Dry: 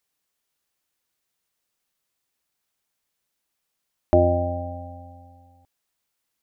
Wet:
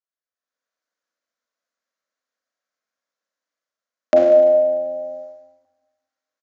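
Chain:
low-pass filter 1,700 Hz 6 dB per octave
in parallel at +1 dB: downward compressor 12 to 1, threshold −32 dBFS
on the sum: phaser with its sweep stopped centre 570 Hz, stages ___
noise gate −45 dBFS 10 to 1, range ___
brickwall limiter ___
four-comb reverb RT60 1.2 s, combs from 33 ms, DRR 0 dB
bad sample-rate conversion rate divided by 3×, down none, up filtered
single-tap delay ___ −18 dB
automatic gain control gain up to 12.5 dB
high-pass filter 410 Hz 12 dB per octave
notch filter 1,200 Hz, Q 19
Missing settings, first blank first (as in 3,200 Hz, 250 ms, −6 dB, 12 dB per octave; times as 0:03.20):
8, −18 dB, −11.5 dBFS, 190 ms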